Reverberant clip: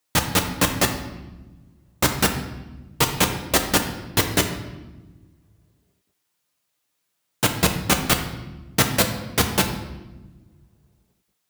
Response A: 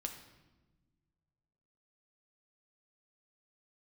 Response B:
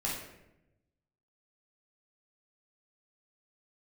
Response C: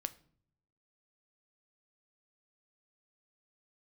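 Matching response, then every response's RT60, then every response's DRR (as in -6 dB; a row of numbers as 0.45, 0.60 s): A; 1.2, 0.90, 0.60 s; 4.0, -5.5, 11.5 dB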